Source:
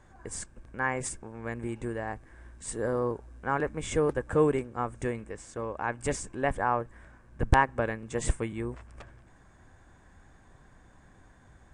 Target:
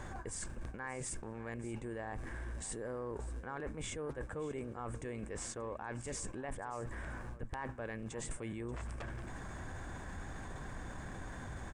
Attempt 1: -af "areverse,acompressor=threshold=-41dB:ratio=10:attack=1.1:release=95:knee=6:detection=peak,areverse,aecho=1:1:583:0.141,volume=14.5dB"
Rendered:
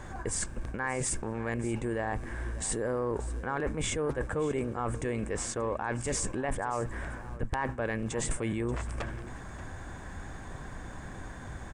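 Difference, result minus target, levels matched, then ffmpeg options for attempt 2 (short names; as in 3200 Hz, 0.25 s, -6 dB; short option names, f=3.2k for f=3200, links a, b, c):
compressor: peak gain reduction -10.5 dB
-af "areverse,acompressor=threshold=-52.5dB:ratio=10:attack=1.1:release=95:knee=6:detection=peak,areverse,aecho=1:1:583:0.141,volume=14.5dB"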